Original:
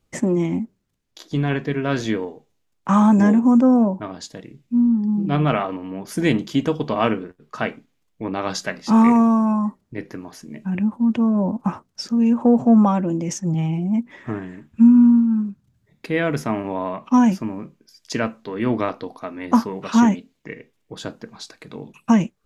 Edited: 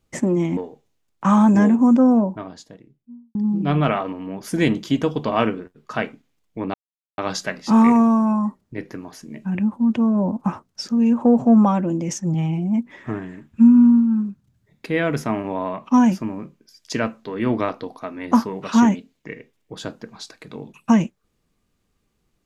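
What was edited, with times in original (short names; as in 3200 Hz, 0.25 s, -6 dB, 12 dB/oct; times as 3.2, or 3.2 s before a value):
0.57–2.21 cut
3.73–4.99 studio fade out
8.38 insert silence 0.44 s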